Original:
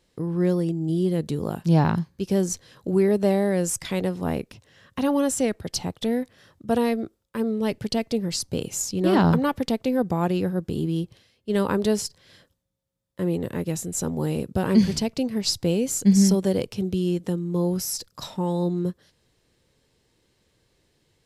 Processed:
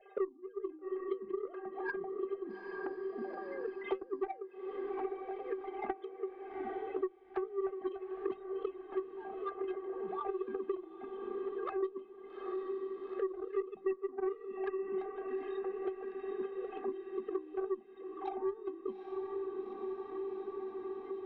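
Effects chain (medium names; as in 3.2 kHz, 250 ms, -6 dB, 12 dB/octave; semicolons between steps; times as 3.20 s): formants replaced by sine waves; low-pass 1.4 kHz 12 dB/octave; peaking EQ 680 Hz +12 dB 0.22 oct; compressor with a negative ratio -33 dBFS, ratio -1; inharmonic resonator 380 Hz, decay 0.22 s, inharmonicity 0.008; touch-sensitive flanger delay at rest 5.1 ms, full sweep at -39.5 dBFS; hum notches 50/100/150/200/250/300/350 Hz; Chebyshev shaper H 2 -26 dB, 3 -26 dB, 4 -45 dB, 7 -22 dB, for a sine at -26 dBFS; echo that smears into a reverb 830 ms, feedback 53%, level -12 dB; three bands compressed up and down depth 100%; trim +11 dB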